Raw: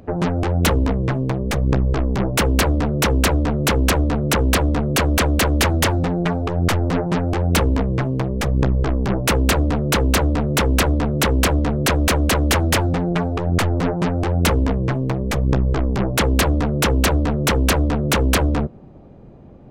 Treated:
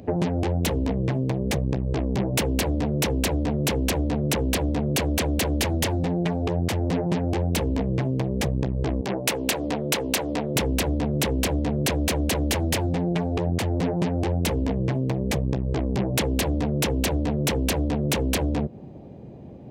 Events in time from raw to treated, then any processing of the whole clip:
9.01–10.56 s: high-pass 510 Hz 6 dB/octave
whole clip: high-pass 78 Hz 12 dB/octave; peaking EQ 1.3 kHz -11 dB 0.71 oct; compression, threshold -23 dBFS; trim +2.5 dB

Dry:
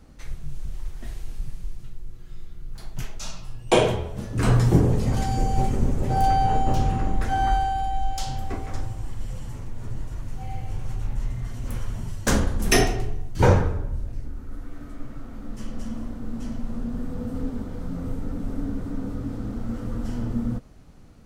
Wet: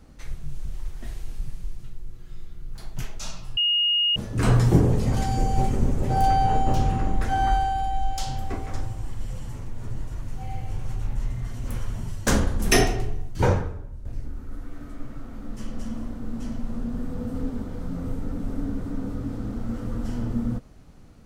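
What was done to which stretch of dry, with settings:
3.57–4.16 s: bleep 2.86 kHz -18.5 dBFS
13.22–14.05 s: fade out quadratic, to -10 dB

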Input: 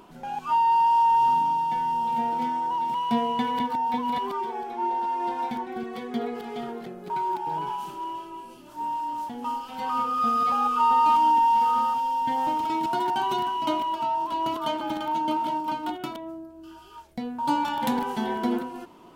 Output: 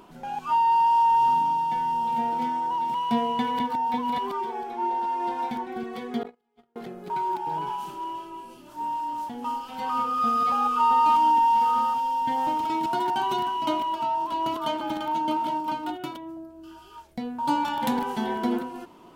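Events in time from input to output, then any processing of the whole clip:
6.23–6.76 s: gate -29 dBFS, range -40 dB
15.84–16.37 s: comb of notches 220 Hz

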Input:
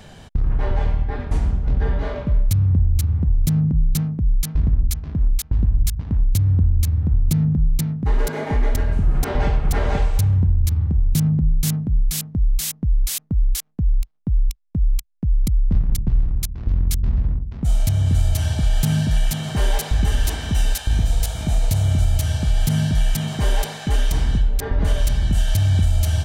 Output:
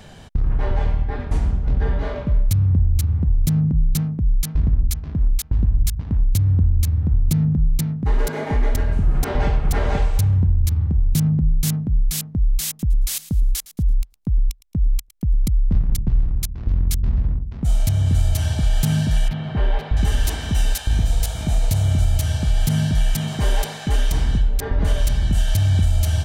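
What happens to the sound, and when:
12.68–15.48 s: thinning echo 111 ms, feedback 31%, level -16.5 dB
19.28–19.97 s: distance through air 380 m

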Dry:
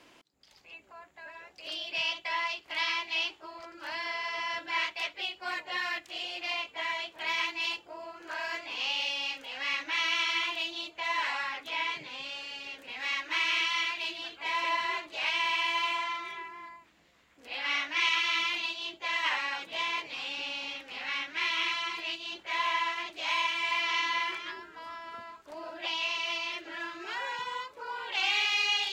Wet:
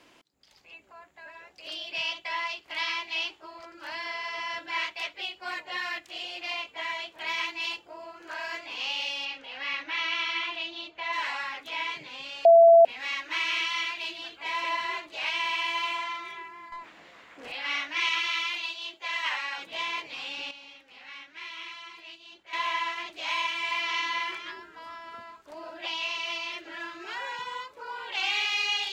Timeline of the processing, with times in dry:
9.25–11.13 s: low-pass 4.3 kHz
12.45–12.85 s: bleep 671 Hz -11 dBFS
16.72–17.52 s: overdrive pedal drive 25 dB, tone 1.6 kHz, clips at -29.5 dBFS
18.27–19.58 s: high-pass 580 Hz 6 dB/octave
20.51–22.53 s: gain -10.5 dB

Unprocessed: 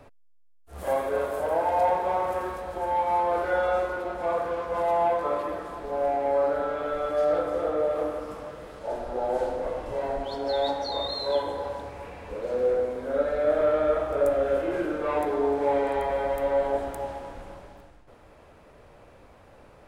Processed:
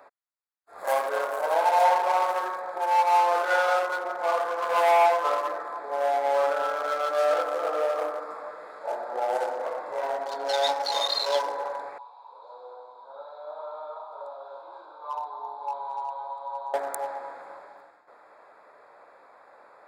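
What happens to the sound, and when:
4.62–5.06 s: waveshaping leveller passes 1
11.98–16.74 s: two resonant band-passes 1.9 kHz, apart 2 oct
whole clip: local Wiener filter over 15 samples; high-pass 920 Hz 12 dB/octave; treble shelf 4.8 kHz +5 dB; trim +8.5 dB

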